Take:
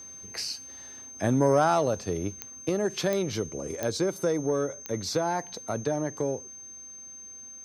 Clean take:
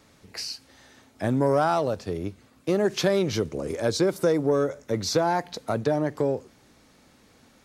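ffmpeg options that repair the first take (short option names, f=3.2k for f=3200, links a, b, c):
-af "adeclick=t=4,bandreject=f=6.3k:w=30,asetnsamples=n=441:p=0,asendcmd='2.69 volume volume 4.5dB',volume=0dB"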